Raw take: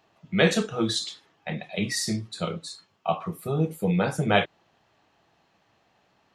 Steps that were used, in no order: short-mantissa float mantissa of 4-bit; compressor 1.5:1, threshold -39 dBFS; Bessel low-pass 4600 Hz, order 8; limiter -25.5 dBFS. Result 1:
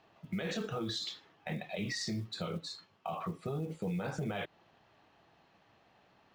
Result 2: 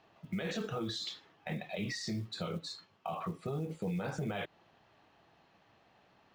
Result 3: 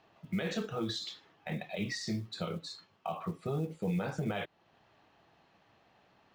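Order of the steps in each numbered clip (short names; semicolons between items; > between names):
Bessel low-pass > short-mantissa float > limiter > compressor; limiter > Bessel low-pass > compressor > short-mantissa float; compressor > limiter > Bessel low-pass > short-mantissa float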